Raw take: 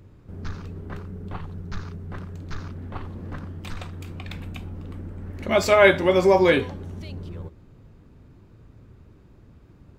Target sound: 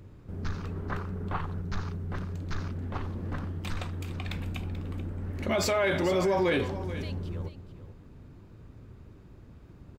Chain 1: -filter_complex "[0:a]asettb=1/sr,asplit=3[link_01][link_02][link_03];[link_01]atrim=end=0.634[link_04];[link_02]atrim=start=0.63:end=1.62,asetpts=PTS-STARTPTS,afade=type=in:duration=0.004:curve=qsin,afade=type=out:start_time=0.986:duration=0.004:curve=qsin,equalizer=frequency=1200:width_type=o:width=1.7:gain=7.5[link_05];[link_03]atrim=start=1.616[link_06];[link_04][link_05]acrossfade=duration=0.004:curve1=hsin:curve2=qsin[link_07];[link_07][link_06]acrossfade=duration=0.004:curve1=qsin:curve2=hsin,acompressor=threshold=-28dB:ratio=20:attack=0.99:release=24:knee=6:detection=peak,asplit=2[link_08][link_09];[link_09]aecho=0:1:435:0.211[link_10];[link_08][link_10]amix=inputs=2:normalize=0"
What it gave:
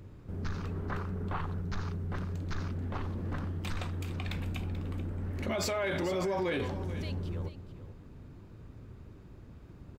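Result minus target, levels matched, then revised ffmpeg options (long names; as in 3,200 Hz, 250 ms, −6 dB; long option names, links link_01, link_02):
downward compressor: peak gain reduction +6 dB
-filter_complex "[0:a]asettb=1/sr,asplit=3[link_01][link_02][link_03];[link_01]atrim=end=0.634[link_04];[link_02]atrim=start=0.63:end=1.62,asetpts=PTS-STARTPTS,afade=type=in:duration=0.004:curve=qsin,afade=type=out:start_time=0.986:duration=0.004:curve=qsin,equalizer=frequency=1200:width_type=o:width=1.7:gain=7.5[link_05];[link_03]atrim=start=1.616[link_06];[link_04][link_05]acrossfade=duration=0.004:curve1=hsin:curve2=qsin[link_07];[link_07][link_06]acrossfade=duration=0.004:curve1=qsin:curve2=hsin,acompressor=threshold=-21.5dB:ratio=20:attack=0.99:release=24:knee=6:detection=peak,asplit=2[link_08][link_09];[link_09]aecho=0:1:435:0.211[link_10];[link_08][link_10]amix=inputs=2:normalize=0"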